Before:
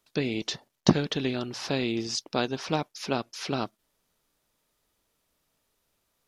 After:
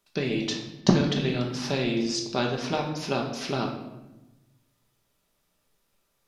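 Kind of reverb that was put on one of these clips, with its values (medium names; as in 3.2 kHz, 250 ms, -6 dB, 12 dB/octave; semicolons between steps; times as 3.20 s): simulated room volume 440 m³, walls mixed, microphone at 1.2 m; trim -1 dB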